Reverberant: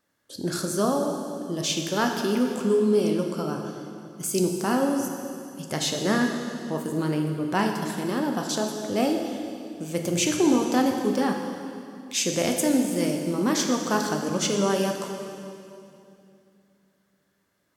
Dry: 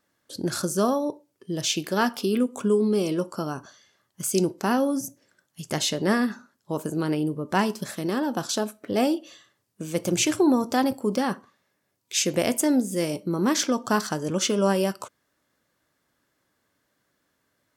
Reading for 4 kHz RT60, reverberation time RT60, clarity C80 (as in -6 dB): 2.4 s, 2.6 s, 5.0 dB